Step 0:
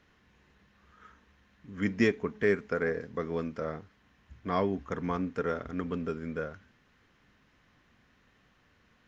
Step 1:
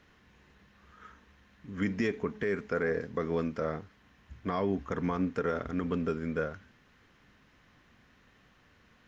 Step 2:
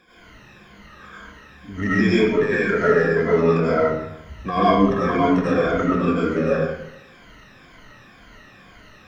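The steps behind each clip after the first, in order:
limiter -23 dBFS, peak gain reduction 10 dB; gain +3 dB
moving spectral ripple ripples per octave 1.8, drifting -2 Hz, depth 22 dB; in parallel at -11 dB: soft clip -31 dBFS, distortion -7 dB; on the sum: digital reverb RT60 0.82 s, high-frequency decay 0.75×, pre-delay 60 ms, DRR -9 dB

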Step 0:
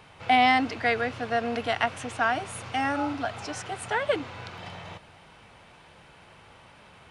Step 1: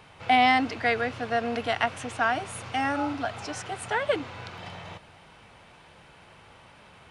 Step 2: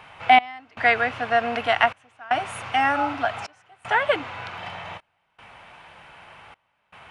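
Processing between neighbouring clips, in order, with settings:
nothing audible
band shelf 1400 Hz +8.5 dB 2.6 oct; step gate "xx..xxxx" 78 bpm -24 dB; gain -1 dB

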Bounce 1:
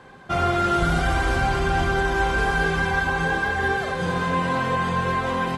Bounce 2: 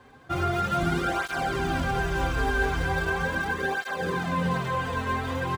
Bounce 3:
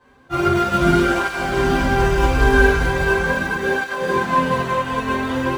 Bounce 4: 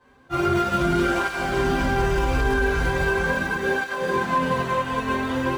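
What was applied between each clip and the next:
in parallel at -11.5 dB: sample-and-hold 42×; on the sum: echo 0.425 s -5 dB; tape flanging out of phase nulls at 0.39 Hz, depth 6.2 ms; gain -3.5 dB
reverb RT60 0.50 s, pre-delay 9 ms, DRR -7 dB; upward expander 1.5:1, over -34 dBFS; gain +3 dB
limiter -9.5 dBFS, peak gain reduction 7.5 dB; gain -3 dB

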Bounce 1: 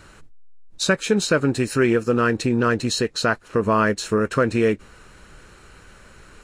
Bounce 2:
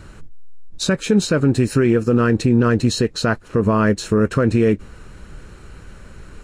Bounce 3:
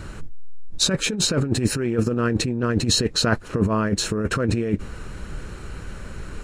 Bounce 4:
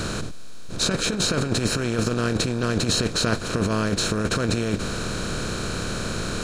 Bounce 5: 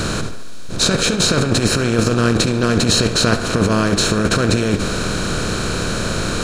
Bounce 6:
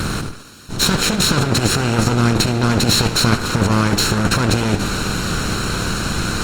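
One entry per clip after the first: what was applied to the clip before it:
low shelf 380 Hz +11 dB; limiter -7 dBFS, peak gain reduction 6.5 dB
negative-ratio compressor -19 dBFS, ratio -0.5
per-bin compression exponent 0.4; gain -6.5 dB
tape echo 70 ms, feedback 64%, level -10 dB, low-pass 3900 Hz; gain +7 dB
minimum comb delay 0.72 ms; gain +1 dB; Opus 32 kbps 48000 Hz

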